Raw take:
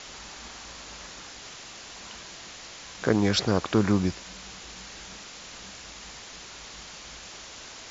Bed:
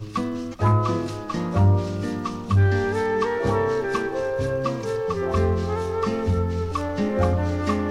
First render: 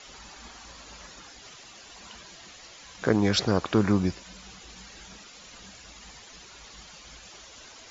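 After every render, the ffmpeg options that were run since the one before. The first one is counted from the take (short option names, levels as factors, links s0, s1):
-af "afftdn=nr=10:nf=-44"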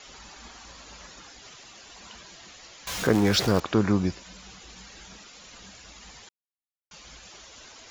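-filter_complex "[0:a]asettb=1/sr,asplit=3[s0][s1][s2];[s0]atrim=end=2.874[s3];[s1]atrim=start=2.87:end=3.6,asetpts=PTS-STARTPTS,afade=t=in:d=0.004:c=qsin,afade=t=out:st=0.726:d=0.004:c=qsin,aeval=exprs='val(0)+0.5*0.0398*sgn(val(0))':c=same[s4];[s2]atrim=start=3.596[s5];[s3][s4]acrossfade=d=0.004:c1=hsin:c2=qsin[s6];[s6][s5]acrossfade=d=0.004:c1=qsin:c2=hsin,asplit=3[s7][s8][s9];[s7]atrim=end=6.29,asetpts=PTS-STARTPTS,afade=t=out:st=6.286:d=0.004:c=hsin[s10];[s8]atrim=start=6.29:end=6.91,asetpts=PTS-STARTPTS,volume=0[s11];[s9]atrim=start=6.91,asetpts=PTS-STARTPTS,afade=t=in:d=0.004:c=hsin[s12];[s10][s11][s12]concat=n=3:v=0:a=1"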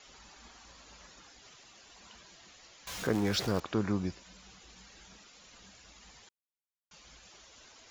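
-af "volume=0.376"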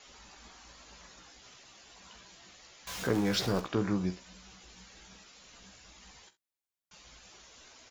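-filter_complex "[0:a]asplit=2[s0][s1];[s1]adelay=16,volume=0.422[s2];[s0][s2]amix=inputs=2:normalize=0,aecho=1:1:44|66:0.168|0.133"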